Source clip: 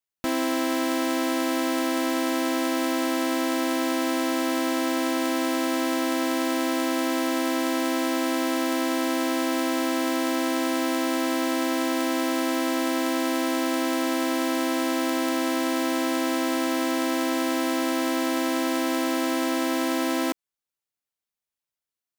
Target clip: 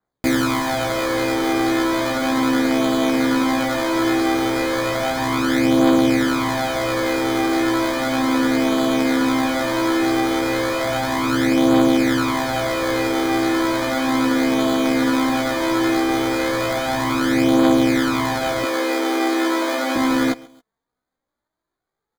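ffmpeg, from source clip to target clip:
-filter_complex "[0:a]acrusher=samples=16:mix=1:aa=0.000001,asettb=1/sr,asplit=3[a][b][c];[a]atrim=end=18.634[d];[b]atrim=start=18.63:end=19.96,asetpts=PTS-STARTPTS,afade=t=in:d=0.004:c=qsin,afade=t=out:st=1.326:d=0.004:c=qsin,highpass=f=260:w=0.5412,highpass=f=260:w=1.3066[e];[c]atrim=start=19.956[f];[d][e]acrossfade=d=0.004:c1=hsin:c2=qsin[g];[g][f]acrossfade=d=0.004:c1=qsin:c2=hsin,aphaser=in_gain=1:out_gain=1:delay=4.7:decay=0.39:speed=0.17:type=triangular,aecho=1:1:136|272:0.0794|0.0254,flanger=delay=15.5:depth=2.3:speed=0.34,adynamicequalizer=threshold=0.00398:dfrequency=5500:dqfactor=0.7:tfrequency=5500:tqfactor=0.7:attack=5:release=100:ratio=0.375:range=3:mode=cutabove:tftype=highshelf,volume=8.5dB"

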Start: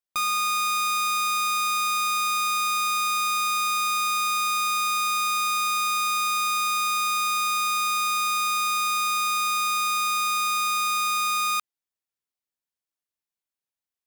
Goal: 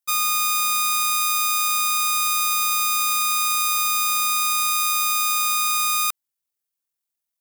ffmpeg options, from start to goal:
-af "atempo=1.9,highshelf=f=6k:g=11.5"

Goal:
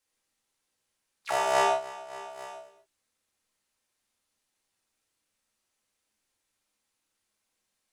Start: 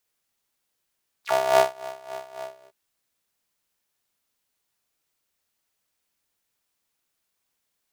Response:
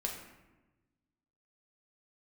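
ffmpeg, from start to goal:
-filter_complex "[0:a]asettb=1/sr,asplit=3[a][b][c];[a]atrim=end=1.524[d];[b]atrim=start=1.52:end=2.3,asetpts=PTS-STARTPTS,afade=t=in:d=0.004:c=qsin,afade=t=out:st=0.776:d=0.004:c=qsin,highshelf=f=9.7k:g=-7.5[e];[c]atrim=start=2.296[f];[d][e]acrossfade=d=0.004:c1=hsin:c2=qsin[g];[g][f]acrossfade=d=0.004:c1=qsin:c2=hsin[h];[1:a]atrim=start_sample=2205,atrim=end_sample=3528,asetrate=22491,aresample=44100[i];[h][i]afir=irnorm=-1:irlink=0,volume=-5.5dB"

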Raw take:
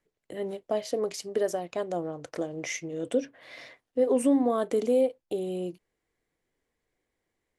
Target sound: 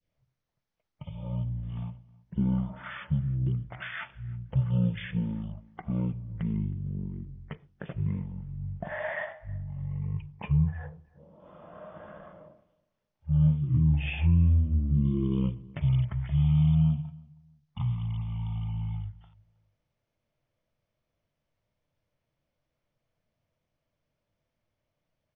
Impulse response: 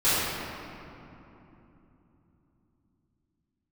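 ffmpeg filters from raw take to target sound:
-filter_complex "[0:a]adynamicequalizer=threshold=0.00398:dfrequency=3000:dqfactor=0.99:tfrequency=3000:tqfactor=0.99:attack=5:release=100:ratio=0.375:range=2:mode=cutabove:tftype=bell,asetrate=13186,aresample=44100,asplit=2[a][b];[b]adelay=318,lowpass=f=1.6k:p=1,volume=-23dB,asplit=2[c][d];[d]adelay=318,lowpass=f=1.6k:p=1,volume=0.22[e];[c][e]amix=inputs=2:normalize=0[f];[a][f]amix=inputs=2:normalize=0"

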